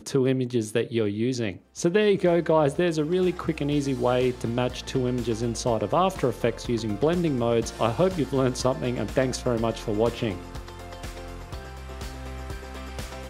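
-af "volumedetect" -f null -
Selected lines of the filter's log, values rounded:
mean_volume: -25.5 dB
max_volume: -7.6 dB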